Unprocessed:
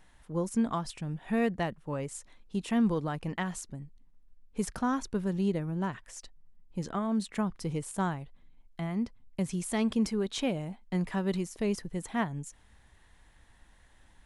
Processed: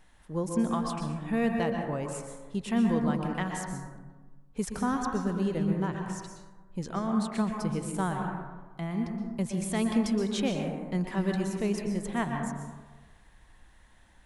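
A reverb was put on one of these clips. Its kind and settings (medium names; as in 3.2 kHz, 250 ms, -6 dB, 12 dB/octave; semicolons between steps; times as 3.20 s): plate-style reverb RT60 1.3 s, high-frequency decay 0.35×, pre-delay 110 ms, DRR 2.5 dB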